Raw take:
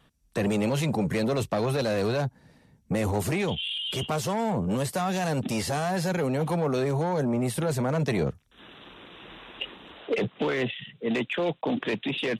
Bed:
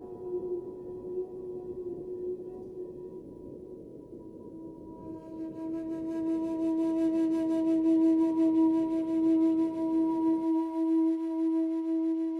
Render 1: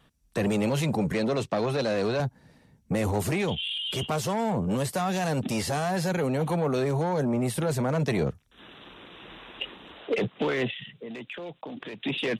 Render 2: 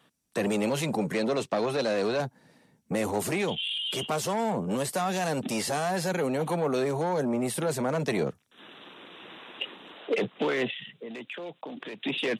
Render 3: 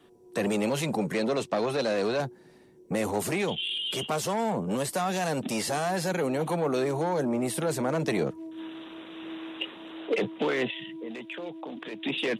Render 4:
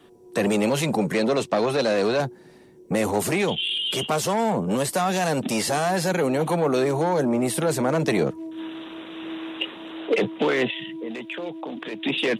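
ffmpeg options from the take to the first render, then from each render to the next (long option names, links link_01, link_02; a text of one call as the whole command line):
ffmpeg -i in.wav -filter_complex "[0:a]asettb=1/sr,asplit=3[link_01][link_02][link_03];[link_01]atrim=end=1.124[link_04];[link_02]atrim=start=1.12:end=2.2,asetpts=PTS-STARTPTS,afade=type=in:duration=0.004:curve=qsin,afade=type=out:start_time=1.076:duration=0.004:curve=qsin,highpass=130,lowpass=7400[link_05];[link_03]atrim=start=2.196[link_06];[link_04][link_05]acrossfade=duration=0.004:curve1=hsin:curve2=qsin[link_07];[link_07][link_06]acrossfade=duration=0.004:curve1=qsin:curve2=hsin,asettb=1/sr,asplit=3[link_08][link_09][link_10];[link_08]atrim=end=6.114[link_11];[link_09]atrim=start=6.11:end=6.76,asetpts=PTS-STARTPTS,afade=type=in:duration=0.004:curve=qsin,afade=type=out:start_time=0.646:duration=0.004:curve=qsin,asuperstop=centerf=5200:order=20:qfactor=6.4[link_12];[link_10]atrim=start=6.756[link_13];[link_11][link_12]acrossfade=duration=0.004:curve1=hsin:curve2=qsin[link_14];[link_14][link_13]acrossfade=duration=0.004:curve1=qsin:curve2=hsin,asettb=1/sr,asplit=3[link_15][link_16][link_17];[link_15]atrim=end=10.784[link_18];[link_16]atrim=start=10.78:end=12.02,asetpts=PTS-STARTPTS,afade=type=in:duration=0.004:curve=qsin,afade=type=out:start_time=1.236:duration=0.004:curve=qsin,acompressor=threshold=-35dB:ratio=8:attack=3.2:release=140:knee=1:detection=peak[link_19];[link_17]atrim=start=12.016[link_20];[link_18][link_19]acrossfade=duration=0.004:curve1=hsin:curve2=qsin[link_21];[link_21][link_20]acrossfade=duration=0.004:curve1=qsin:curve2=hsin" out.wav
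ffmpeg -i in.wav -af "highpass=200,equalizer=frequency=8900:width_type=o:width=0.77:gain=2.5" out.wav
ffmpeg -i in.wav -i bed.wav -filter_complex "[1:a]volume=-15.5dB[link_01];[0:a][link_01]amix=inputs=2:normalize=0" out.wav
ffmpeg -i in.wav -af "volume=5.5dB" out.wav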